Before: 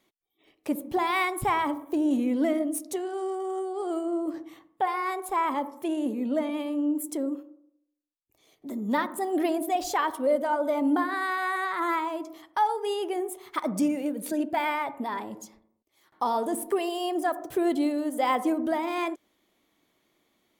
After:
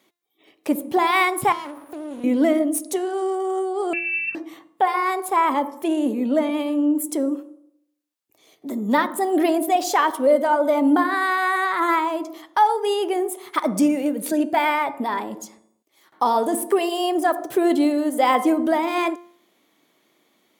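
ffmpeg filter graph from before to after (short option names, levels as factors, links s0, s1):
-filter_complex "[0:a]asettb=1/sr,asplit=3[s0][s1][s2];[s0]atrim=end=1.524[s3];[s1]atrim=start=1.52:end=2.24,asetpts=PTS-STARTPTS,afade=t=in:d=0.004:c=qsin,afade=t=out:st=0.716:d=0.004:c=qsin,aeval=exprs='max(val(0),0)':c=same,acompressor=threshold=0.00708:ratio=2:attack=3.2:release=140:knee=1:detection=peak,aeval=exprs='val(0)+0.000447*sin(2*PI*9900*n/s)':c=same[s4];[s2]atrim=start=2.236[s5];[s3][s4]acrossfade=d=0.004:c1=hsin:c2=qsin[s6];[s6][s5]acrossfade=d=0.004:c1=qsin:c2=hsin,asettb=1/sr,asplit=3[s7][s8][s9];[s7]atrim=end=3.934[s10];[s8]atrim=start=3.93:end=4.35,asetpts=PTS-STARTPTS,afade=t=in:d=0.004:c=qsin,afade=t=out:st=0.416:d=0.004:c=qsin,lowpass=f=2600:t=q:w=0.5098,lowpass=f=2600:t=q:w=0.6013,lowpass=f=2600:t=q:w=0.9,lowpass=f=2600:t=q:w=2.563,afreqshift=-3000,aeval=exprs='val(0)+0.00126*(sin(2*PI*50*n/s)+sin(2*PI*2*50*n/s)/2+sin(2*PI*3*50*n/s)/3+sin(2*PI*4*50*n/s)/4+sin(2*PI*5*50*n/s)/5)':c=same,equalizer=f=1800:w=0.55:g=-5[s11];[s9]atrim=start=4.346[s12];[s10][s11]acrossfade=d=0.004:c1=hsin:c2=qsin[s13];[s13][s12]acrossfade=d=0.004:c1=qsin:c2=hsin,highpass=180,bandreject=f=348.1:t=h:w=4,bandreject=f=696.2:t=h:w=4,bandreject=f=1044.3:t=h:w=4,bandreject=f=1392.4:t=h:w=4,bandreject=f=1740.5:t=h:w=4,bandreject=f=2088.6:t=h:w=4,bandreject=f=2436.7:t=h:w=4,bandreject=f=2784.8:t=h:w=4,bandreject=f=3132.9:t=h:w=4,bandreject=f=3481:t=h:w=4,bandreject=f=3829.1:t=h:w=4,bandreject=f=4177.2:t=h:w=4,bandreject=f=4525.3:t=h:w=4,bandreject=f=4873.4:t=h:w=4,bandreject=f=5221.5:t=h:w=4,bandreject=f=5569.6:t=h:w=4,bandreject=f=5917.7:t=h:w=4,bandreject=f=6265.8:t=h:w=4,bandreject=f=6613.9:t=h:w=4,bandreject=f=6962:t=h:w=4,bandreject=f=7310.1:t=h:w=4,bandreject=f=7658.2:t=h:w=4,bandreject=f=8006.3:t=h:w=4,bandreject=f=8354.4:t=h:w=4,bandreject=f=8702.5:t=h:w=4,bandreject=f=9050.6:t=h:w=4,bandreject=f=9398.7:t=h:w=4,bandreject=f=9746.8:t=h:w=4,bandreject=f=10094.9:t=h:w=4,bandreject=f=10443:t=h:w=4,bandreject=f=10791.1:t=h:w=4,bandreject=f=11139.2:t=h:w=4,volume=2.37"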